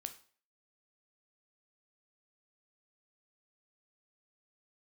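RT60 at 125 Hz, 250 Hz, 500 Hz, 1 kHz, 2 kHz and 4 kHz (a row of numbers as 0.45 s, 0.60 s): 0.40 s, 0.40 s, 0.45 s, 0.45 s, 0.45 s, 0.40 s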